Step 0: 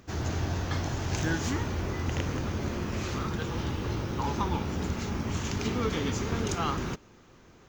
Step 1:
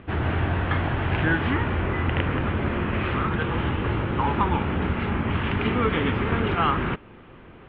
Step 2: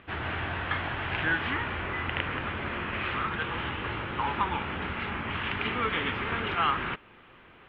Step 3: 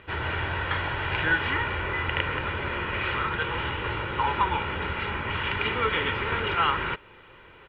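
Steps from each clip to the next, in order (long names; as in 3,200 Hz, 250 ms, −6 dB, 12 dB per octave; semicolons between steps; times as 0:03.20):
Butterworth low-pass 3,200 Hz 48 dB per octave; dynamic equaliser 1,600 Hz, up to +5 dB, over −45 dBFS, Q 0.84; in parallel at −0.5 dB: downward compressor, threshold −36 dBFS, peak gain reduction 13 dB; on the sum: level +3.5 dB
tilt shelving filter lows −7 dB, about 750 Hz; level −6 dB
comb filter 2.1 ms, depth 48%; level +2.5 dB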